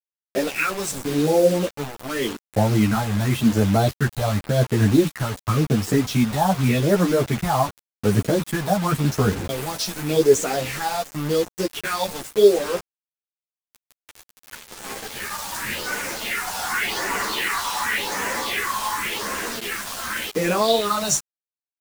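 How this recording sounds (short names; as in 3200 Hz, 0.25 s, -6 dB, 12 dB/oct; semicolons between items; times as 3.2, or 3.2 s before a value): phasing stages 4, 0.89 Hz, lowest notch 340–3800 Hz; a quantiser's noise floor 6-bit, dither none; a shimmering, thickened sound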